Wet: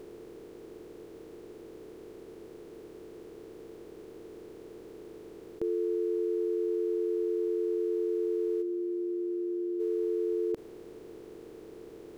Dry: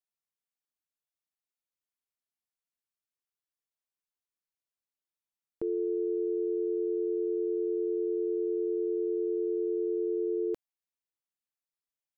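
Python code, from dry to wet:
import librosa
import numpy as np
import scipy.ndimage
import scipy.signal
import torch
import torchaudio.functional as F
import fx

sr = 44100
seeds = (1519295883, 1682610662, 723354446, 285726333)

y = fx.bin_compress(x, sr, power=0.2)
y = fx.comb_fb(y, sr, f0_hz=50.0, decay_s=1.2, harmonics='all', damping=0.0, mix_pct=80, at=(8.61, 9.79), fade=0.02)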